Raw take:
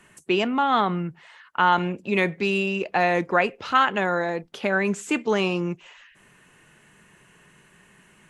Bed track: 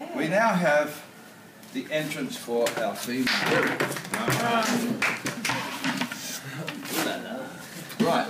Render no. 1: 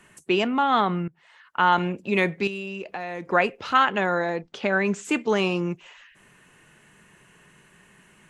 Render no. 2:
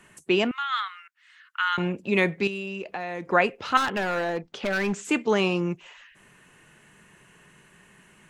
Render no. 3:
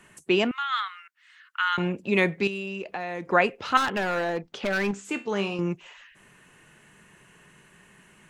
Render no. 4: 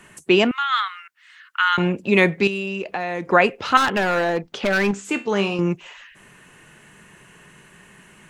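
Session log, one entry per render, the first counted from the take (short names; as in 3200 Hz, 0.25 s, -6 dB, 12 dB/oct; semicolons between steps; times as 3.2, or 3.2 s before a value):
1.08–1.81 fade in equal-power, from -19.5 dB; 2.47–3.28 compressor 3:1, threshold -32 dBFS; 3.78–5.05 LPF 7400 Hz 24 dB/oct
0.51–1.78 steep high-pass 1300 Hz; 3.77–4.99 hard clip -22 dBFS
4.91–5.59 resonator 66 Hz, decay 0.3 s, mix 70%
gain +6.5 dB; limiter -2 dBFS, peak gain reduction 2 dB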